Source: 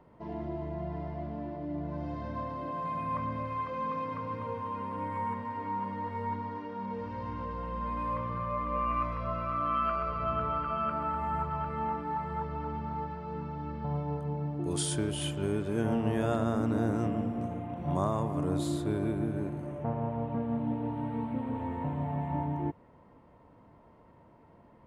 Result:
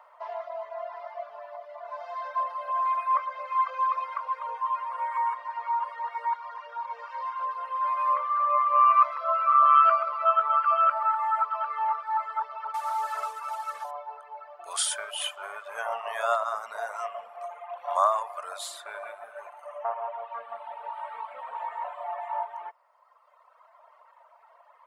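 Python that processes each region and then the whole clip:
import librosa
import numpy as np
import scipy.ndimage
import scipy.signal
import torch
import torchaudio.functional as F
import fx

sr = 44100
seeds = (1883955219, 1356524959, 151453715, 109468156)

y = fx.chain(x, sr, fx.cvsd(bps=64000),
    fx.env_flatten(amount_pct=100), at=(12.74, 13.91))
y = scipy.signal.sosfilt(scipy.signal.ellip(4, 1.0, 50, 620.0, 'highpass', fs=sr, output='sos'), y)
y = fx.dereverb_blind(y, sr, rt60_s=2.0)
y = fx.peak_eq(y, sr, hz=1200.0, db=9.0, octaves=0.44)
y = y * 10.0 ** (8.0 / 20.0)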